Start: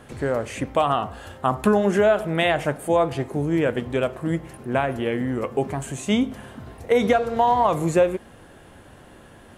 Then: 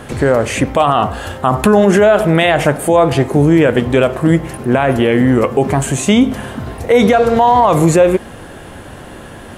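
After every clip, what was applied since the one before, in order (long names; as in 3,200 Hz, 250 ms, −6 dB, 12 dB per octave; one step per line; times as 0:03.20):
boost into a limiter +15.5 dB
level −1 dB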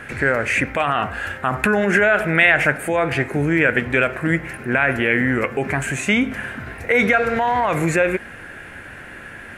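flat-topped bell 1,900 Hz +14 dB 1.1 octaves
level −9.5 dB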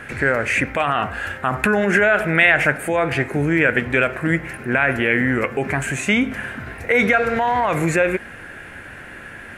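no processing that can be heard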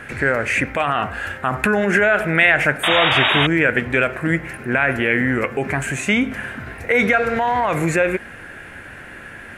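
sound drawn into the spectrogram noise, 0:02.83–0:03.47, 580–3,800 Hz −17 dBFS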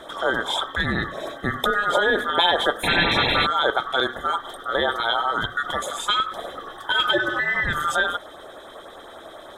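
neighbouring bands swapped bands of 1,000 Hz
auto-filter notch saw up 10 Hz 490–7,100 Hz
level −3 dB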